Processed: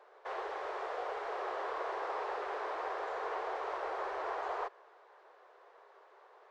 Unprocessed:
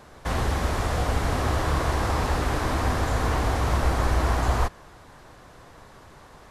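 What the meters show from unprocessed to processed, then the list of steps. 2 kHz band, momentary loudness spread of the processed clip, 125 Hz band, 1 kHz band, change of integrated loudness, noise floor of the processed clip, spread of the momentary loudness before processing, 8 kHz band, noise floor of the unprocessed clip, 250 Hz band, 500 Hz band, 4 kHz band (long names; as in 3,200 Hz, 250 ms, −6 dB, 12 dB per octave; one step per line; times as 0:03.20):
−11.5 dB, 2 LU, below −40 dB, −9.0 dB, −13.0 dB, −62 dBFS, 2 LU, below −25 dB, −49 dBFS, −24.0 dB, −8.5 dB, −18.0 dB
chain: elliptic high-pass filter 400 Hz, stop band 40 dB
head-to-tape spacing loss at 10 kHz 30 dB
level −6 dB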